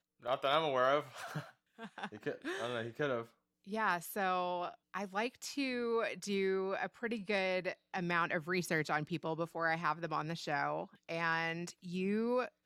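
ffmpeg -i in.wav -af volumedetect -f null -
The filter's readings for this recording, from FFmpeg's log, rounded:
mean_volume: -37.1 dB
max_volume: -17.1 dB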